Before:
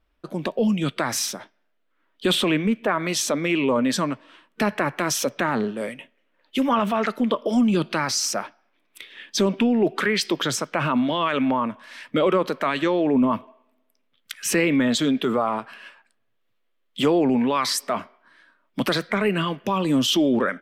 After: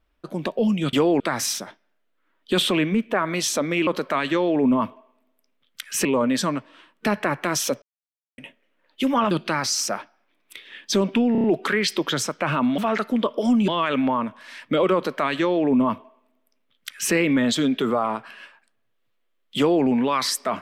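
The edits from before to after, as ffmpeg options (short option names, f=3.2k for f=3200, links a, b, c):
-filter_complex "[0:a]asplit=14[a][b][c][d][e][f][g][h][i][j][k][l][m][n];[a]atrim=end=0.932[o];[b]atrim=start=16.998:end=17.272[p];[c]atrim=start=0.928:end=3.602[q];[d]atrim=start=12.378:end=14.562[r];[e]atrim=start=3.598:end=5.37,asetpts=PTS-STARTPTS,afade=t=out:st=1.768:d=0.004:c=hsin[s];[f]atrim=start=5.37:end=5.93,asetpts=PTS-STARTPTS,volume=0[t];[g]atrim=start=5.93:end=6.862,asetpts=PTS-STARTPTS,afade=t=in:d=0.004:c=hsin[u];[h]atrim=start=7.758:end=9.802[v];[i]atrim=start=9.768:end=9.802[w];[j]atrim=start=9.768:end=9.802[x];[k]atrim=start=9.768:end=9.802[y];[l]atrim=start=9.768:end=11.112[z];[m]atrim=start=6.858:end=7.762[aa];[n]atrim=start=11.108[ab];[o][p]acrossfade=d=0.004:c1=hsin:c2=hsin[ac];[ac][q]acrossfade=d=0.004:c1=hsin:c2=hsin[ad];[ad][r]acrossfade=d=0.004:c1=hsin:c2=hsin[ae];[s][t][u]concat=n=3:v=0:a=1[af];[ae][af]acrossfade=d=0.004:c1=hsin:c2=hsin[ag];[ag][v]acrossfade=d=0.004:c1=hsin:c2=hsin[ah];[ah][w]acrossfade=d=0.004:c1=hsin:c2=hsin[ai];[ai][x]acrossfade=d=0.004:c1=hsin:c2=hsin[aj];[aj][y]acrossfade=d=0.004:c1=hsin:c2=hsin[ak];[ak][z]acrossfade=d=0.004:c1=hsin:c2=hsin[al];[al][aa]acrossfade=d=0.004:c1=hsin:c2=hsin[am];[am][ab]acrossfade=d=0.004:c1=hsin:c2=hsin"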